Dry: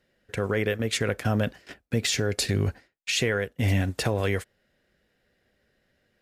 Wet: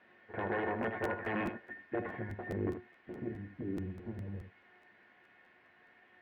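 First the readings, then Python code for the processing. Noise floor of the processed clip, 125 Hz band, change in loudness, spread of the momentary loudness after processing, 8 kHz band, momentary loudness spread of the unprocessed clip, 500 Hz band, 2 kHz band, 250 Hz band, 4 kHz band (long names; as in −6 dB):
−65 dBFS, −16.5 dB, −12.0 dB, 11 LU, below −35 dB, 7 LU, −10.5 dB, −10.5 dB, −9.0 dB, below −25 dB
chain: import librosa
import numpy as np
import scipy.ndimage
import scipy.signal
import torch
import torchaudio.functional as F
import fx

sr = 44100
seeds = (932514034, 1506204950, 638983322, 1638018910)

p1 = fx.lower_of_two(x, sr, delay_ms=8.9)
p2 = fx.spec_box(p1, sr, start_s=1.7, length_s=2.16, low_hz=320.0, high_hz=1600.0, gain_db=-19)
p3 = fx.rider(p2, sr, range_db=5, speed_s=0.5)
p4 = p2 + (p3 * 10.0 ** (-2.0 / 20.0))
p5 = fx.cheby_harmonics(p4, sr, harmonics=(7,), levels_db=(-8,), full_scale_db=-6.0)
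p6 = fx.filter_sweep_lowpass(p5, sr, from_hz=1000.0, to_hz=180.0, start_s=2.02, end_s=4.02, q=1.0)
p7 = 10.0 ** (-18.5 / 20.0) * (np.abs((p6 / 10.0 ** (-18.5 / 20.0) + 3.0) % 4.0 - 2.0) - 1.0)
p8 = fx.quant_dither(p7, sr, seeds[0], bits=8, dither='triangular')
p9 = fx.cabinet(p8, sr, low_hz=120.0, low_slope=12, high_hz=2200.0, hz=(130.0, 1200.0, 1800.0), db=(-8, -6, 8))
p10 = fx.comb_fb(p9, sr, f0_hz=360.0, decay_s=0.23, harmonics='all', damping=0.0, mix_pct=80)
p11 = p10 + fx.echo_single(p10, sr, ms=79, db=-9.0, dry=0)
p12 = fx.buffer_crackle(p11, sr, first_s=0.82, period_s=0.21, block=512, kind='repeat')
y = p12 * 10.0 ** (2.5 / 20.0)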